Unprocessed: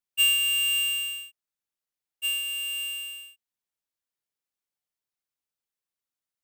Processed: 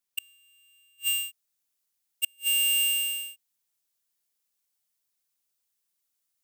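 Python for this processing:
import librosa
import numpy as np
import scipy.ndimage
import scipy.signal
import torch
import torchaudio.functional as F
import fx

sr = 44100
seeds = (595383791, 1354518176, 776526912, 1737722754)

y = fx.gate_flip(x, sr, shuts_db=-27.0, range_db=-41)
y = fx.high_shelf(y, sr, hz=4000.0, db=fx.steps((0.0, 6.5), (1.03, 12.0)))
y = F.gain(torch.from_numpy(y), 1.5).numpy()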